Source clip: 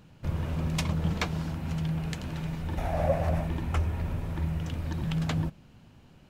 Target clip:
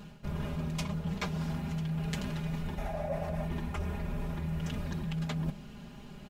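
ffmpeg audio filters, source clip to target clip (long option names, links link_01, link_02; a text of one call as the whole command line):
ffmpeg -i in.wav -af "aecho=1:1:4.9:0.98,areverse,acompressor=threshold=-36dB:ratio=12,areverse,volume=5dB" out.wav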